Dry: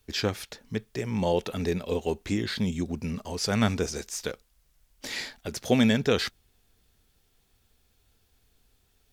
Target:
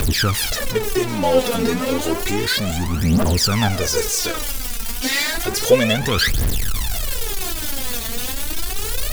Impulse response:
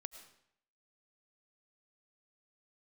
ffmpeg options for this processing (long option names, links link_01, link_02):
-filter_complex "[0:a]aeval=exprs='val(0)+0.5*0.0596*sgn(val(0))':channel_layout=same,aphaser=in_gain=1:out_gain=1:delay=4.5:decay=0.79:speed=0.31:type=triangular,asplit=2[link_01][link_02];[link_02]equalizer=frequency=12000:width_type=o:width=0.77:gain=6.5[link_03];[1:a]atrim=start_sample=2205,asetrate=32634,aresample=44100[link_04];[link_03][link_04]afir=irnorm=-1:irlink=0,volume=-7.5dB[link_05];[link_01][link_05]amix=inputs=2:normalize=0"